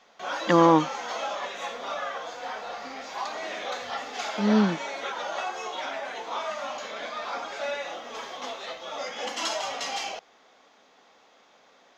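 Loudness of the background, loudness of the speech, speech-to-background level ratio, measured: -33.0 LUFS, -22.0 LUFS, 11.0 dB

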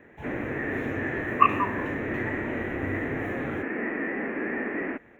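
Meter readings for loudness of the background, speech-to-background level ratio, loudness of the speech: -40.5 LUFS, 11.5 dB, -29.0 LUFS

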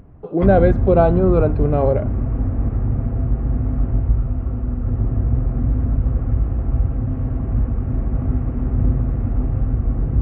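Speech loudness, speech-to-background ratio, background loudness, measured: -17.5 LUFS, 4.0 dB, -21.5 LUFS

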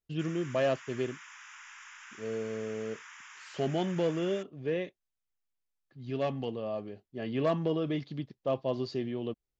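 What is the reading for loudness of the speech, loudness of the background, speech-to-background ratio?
-33.5 LUFS, -48.5 LUFS, 15.0 dB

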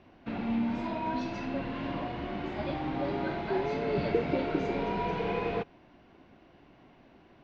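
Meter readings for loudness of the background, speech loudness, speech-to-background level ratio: -33.5 LUFS, -34.0 LUFS, -0.5 dB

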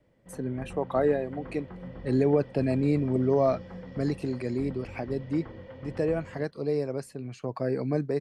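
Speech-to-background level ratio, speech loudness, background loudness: 15.0 dB, -29.0 LUFS, -44.0 LUFS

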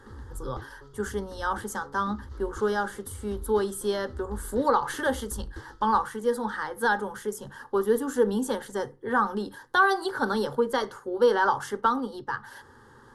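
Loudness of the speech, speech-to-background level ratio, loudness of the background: -28.0 LUFS, 17.0 dB, -45.0 LUFS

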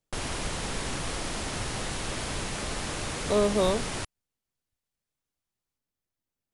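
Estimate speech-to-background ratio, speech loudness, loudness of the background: 6.0 dB, -27.0 LUFS, -33.0 LUFS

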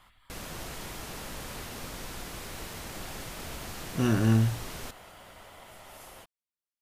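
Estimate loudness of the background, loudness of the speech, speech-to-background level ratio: -40.5 LUFS, -27.0 LUFS, 13.5 dB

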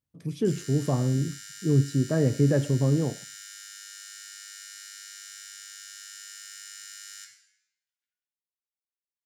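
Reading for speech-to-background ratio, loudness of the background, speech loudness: 16.0 dB, -41.5 LUFS, -25.5 LUFS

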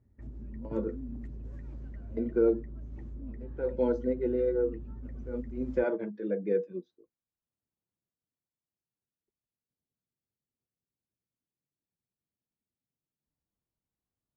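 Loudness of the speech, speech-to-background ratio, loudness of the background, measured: -31.5 LUFS, 12.5 dB, -44.0 LUFS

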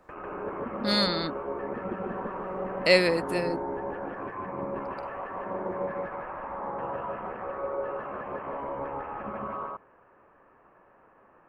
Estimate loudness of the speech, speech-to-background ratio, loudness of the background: -26.0 LUFS, 9.0 dB, -35.0 LUFS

